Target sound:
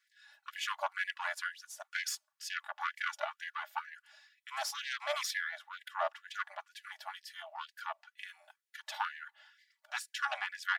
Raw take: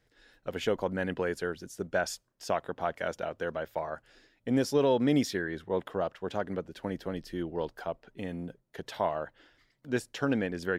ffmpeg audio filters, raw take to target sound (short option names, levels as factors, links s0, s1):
-af "aecho=1:1:3.5:0.86,aeval=exprs='0.299*(cos(1*acos(clip(val(0)/0.299,-1,1)))-cos(1*PI/2))+0.0473*(cos(6*acos(clip(val(0)/0.299,-1,1)))-cos(6*PI/2))':c=same,afftfilt=real='re*gte(b*sr/1024,570*pow(1600/570,0.5+0.5*sin(2*PI*2.1*pts/sr)))':imag='im*gte(b*sr/1024,570*pow(1600/570,0.5+0.5*sin(2*PI*2.1*pts/sr)))':win_size=1024:overlap=0.75,volume=0.794"